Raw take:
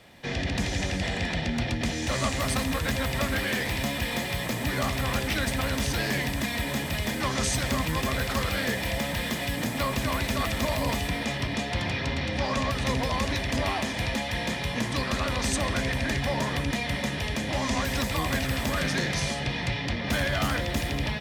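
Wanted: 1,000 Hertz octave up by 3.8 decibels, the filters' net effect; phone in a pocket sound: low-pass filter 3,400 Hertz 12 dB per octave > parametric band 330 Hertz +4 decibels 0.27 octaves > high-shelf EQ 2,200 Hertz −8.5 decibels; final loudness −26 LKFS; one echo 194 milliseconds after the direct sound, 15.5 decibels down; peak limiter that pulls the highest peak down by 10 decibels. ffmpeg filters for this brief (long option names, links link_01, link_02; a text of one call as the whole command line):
ffmpeg -i in.wav -af "equalizer=frequency=1000:width_type=o:gain=6.5,alimiter=limit=-22.5dB:level=0:latency=1,lowpass=3400,equalizer=frequency=330:width_type=o:width=0.27:gain=4,highshelf=frequency=2200:gain=-8.5,aecho=1:1:194:0.168,volume=7dB" out.wav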